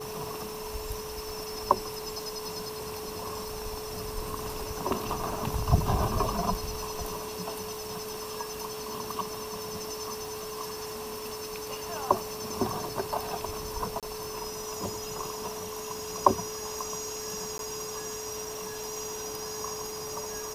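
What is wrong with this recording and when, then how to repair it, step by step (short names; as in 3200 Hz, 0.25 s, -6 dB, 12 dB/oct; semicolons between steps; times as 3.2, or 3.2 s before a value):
crackle 56/s -38 dBFS
tone 430 Hz -38 dBFS
14–14.03 gap 27 ms
17.58–17.59 gap 12 ms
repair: de-click; notch 430 Hz, Q 30; interpolate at 14, 27 ms; interpolate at 17.58, 12 ms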